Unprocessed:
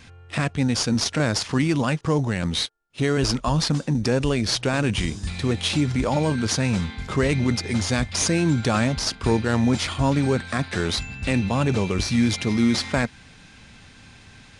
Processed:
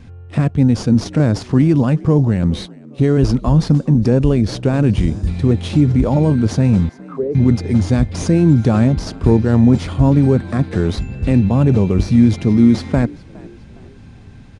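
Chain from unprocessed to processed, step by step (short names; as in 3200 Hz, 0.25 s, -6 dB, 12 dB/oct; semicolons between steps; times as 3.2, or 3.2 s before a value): 6.89–7.35 auto-wah 430–2100 Hz, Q 4.4, down, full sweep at -17.5 dBFS; tilt shelf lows +9.5 dB, about 810 Hz; frequency-shifting echo 0.412 s, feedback 38%, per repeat +56 Hz, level -23 dB; gain +1.5 dB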